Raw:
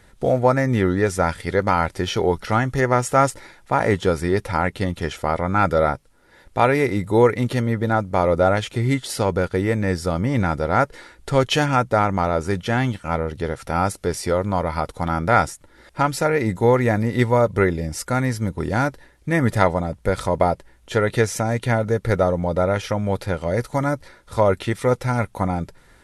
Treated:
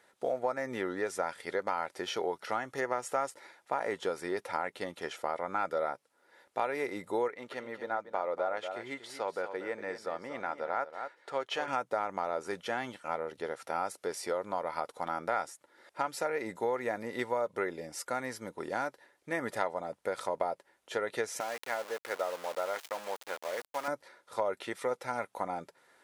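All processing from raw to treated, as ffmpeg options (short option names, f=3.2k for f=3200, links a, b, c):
-filter_complex "[0:a]asettb=1/sr,asplit=3[a][b][c];[a]atrim=end=7.284[d];[b]atrim=start=7.28:end=11.68,asetpts=PTS-STARTPTS,afade=t=in:d=0.004:c=qsin,afade=t=out:st=4.396:d=0.004:c=qsin,lowpass=f=2.4k:p=1,lowshelf=f=320:g=-11.5,aecho=1:1:236:0.282,atrim=end_sample=194040[e];[c]atrim=start=11.676[f];[d][e]acrossfade=d=0.004:c1=hsin:c2=qsin[g];[g][f]acrossfade=d=0.004:c1=qsin:c2=hsin,asettb=1/sr,asplit=3[h][i][j];[h]atrim=end=21.404[k];[i]atrim=start=21.4:end=23.88,asetpts=PTS-STARTPTS,afade=t=in:d=0.004:c=qsin,afade=t=out:st=2.476:d=0.004:c=qsin,aeval=exprs='val(0)*gte(abs(val(0)),0.0501)':c=same,highpass=f=770:p=1[l];[j]atrim=start=23.876[m];[k][l]acrossfade=d=0.004:c1=hsin:c2=qsin[n];[n][m]acrossfade=d=0.004:c1=qsin:c2=hsin,highpass=600,tiltshelf=f=770:g=4.5,acompressor=threshold=-23dB:ratio=3,volume=-6dB"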